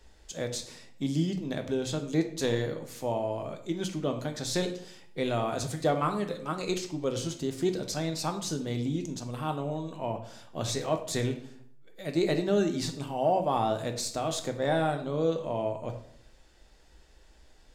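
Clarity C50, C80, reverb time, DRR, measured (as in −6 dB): 10.0 dB, 13.0 dB, 0.65 s, 4.5 dB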